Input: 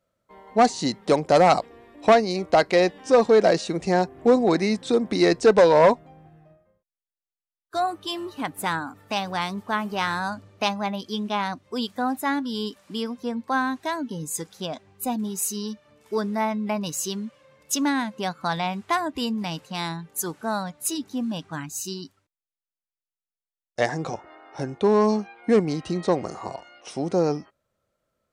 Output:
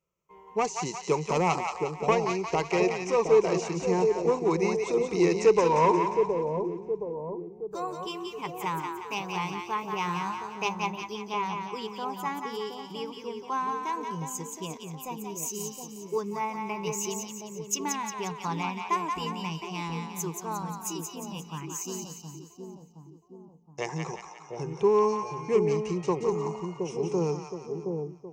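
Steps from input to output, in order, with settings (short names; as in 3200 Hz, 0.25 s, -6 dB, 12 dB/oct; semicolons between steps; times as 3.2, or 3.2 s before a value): ripple EQ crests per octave 0.75, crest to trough 15 dB; on a send: split-band echo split 730 Hz, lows 0.719 s, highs 0.177 s, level -4.5 dB; on the sum: gain -9 dB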